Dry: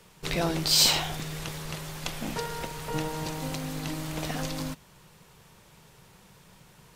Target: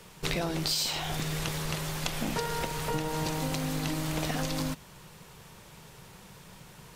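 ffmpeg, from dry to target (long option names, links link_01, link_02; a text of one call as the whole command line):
ffmpeg -i in.wav -af "acompressor=threshold=-31dB:ratio=16,volume=4.5dB" out.wav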